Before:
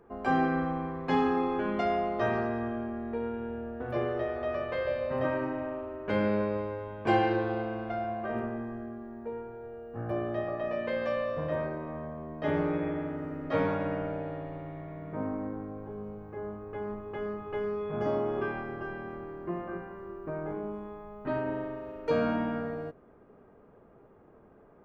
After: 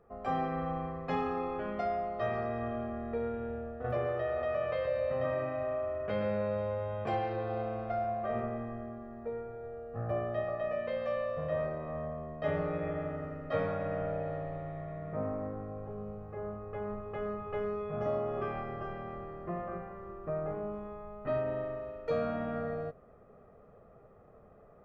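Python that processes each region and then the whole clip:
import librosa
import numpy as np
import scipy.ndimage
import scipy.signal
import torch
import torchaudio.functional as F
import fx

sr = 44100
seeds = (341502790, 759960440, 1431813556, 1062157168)

y = fx.chain(x, sr, fx.highpass(hz=50.0, slope=12),
    fx.echo_single(ms=124, db=-8.5),
    fx.env_flatten(amount_pct=50), at=(3.84, 7.14))
y = fx.high_shelf(y, sr, hz=4200.0, db=-6.5)
y = y + 0.62 * np.pad(y, (int(1.6 * sr / 1000.0), 0))[:len(y)]
y = fx.rider(y, sr, range_db=4, speed_s=0.5)
y = F.gain(torch.from_numpy(y), -5.0).numpy()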